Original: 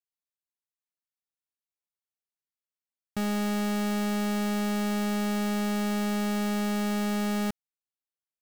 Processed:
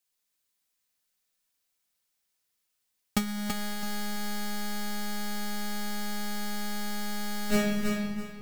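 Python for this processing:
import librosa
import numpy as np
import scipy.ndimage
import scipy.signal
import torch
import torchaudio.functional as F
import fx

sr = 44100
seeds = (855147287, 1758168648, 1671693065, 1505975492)

p1 = fx.high_shelf(x, sr, hz=2200.0, db=8.5)
p2 = fx.room_shoebox(p1, sr, seeds[0], volume_m3=1600.0, walls='mixed', distance_m=2.0)
p3 = fx.over_compress(p2, sr, threshold_db=-26.0, ratio=-0.5)
p4 = p3 + fx.echo_feedback(p3, sr, ms=331, feedback_pct=26, wet_db=-5.0, dry=0)
y = p4 * 10.0 ** (-2.0 / 20.0)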